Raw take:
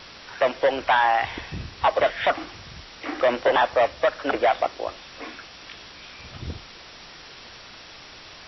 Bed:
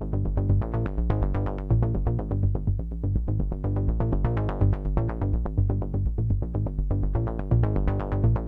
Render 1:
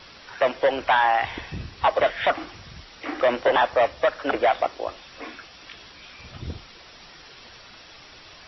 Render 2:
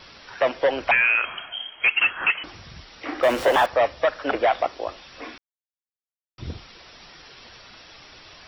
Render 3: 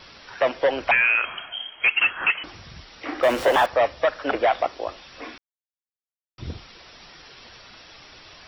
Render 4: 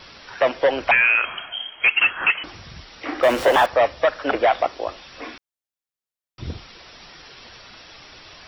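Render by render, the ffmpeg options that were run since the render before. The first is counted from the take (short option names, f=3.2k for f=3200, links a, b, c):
-af "afftdn=nr=6:nf=-45"
-filter_complex "[0:a]asettb=1/sr,asplit=3[a][b][c];[a]atrim=end=0.914[d];[b]atrim=start=0.91:end=2.44,asetpts=PTS-STARTPTS,afade=t=in:d=0.004:c=qsin,afade=t=out:st=1.526:d=0.004:c=qsin,lowpass=f=2.8k:t=q:w=0.5098,lowpass=f=2.8k:t=q:w=0.6013,lowpass=f=2.8k:t=q:w=0.9,lowpass=f=2.8k:t=q:w=2.563,afreqshift=-3300[e];[c]atrim=start=2.436[f];[d][e]acrossfade=d=0.004:c1=hsin:c2=qsin[g];[g][f]acrossfade=d=0.004:c1=qsin:c2=hsin,asettb=1/sr,asplit=3[h][i][j];[h]atrim=end=3.234[k];[i]atrim=start=3.23:end=3.66,asetpts=PTS-STARTPTS,afade=t=in:d=0.004:c=qsin,afade=t=out:st=0.426:d=0.004:c=qsin,aeval=exprs='val(0)+0.5*0.0398*sgn(val(0))':c=same[l];[j]atrim=start=3.656[m];[k][l]acrossfade=d=0.004:c1=hsin:c2=qsin[n];[n][m]acrossfade=d=0.004:c1=qsin:c2=hsin,asplit=3[o][p][q];[o]atrim=end=5.38,asetpts=PTS-STARTPTS,afade=t=out:st=5.376:d=0.004:c=hsin[r];[p]atrim=start=5.38:end=6.38,asetpts=PTS-STARTPTS,volume=0[s];[q]atrim=start=6.38,asetpts=PTS-STARTPTS,afade=t=in:d=0.004:c=hsin[t];[r][s][t]concat=n=3:v=0:a=1"
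-af anull
-af "volume=2.5dB"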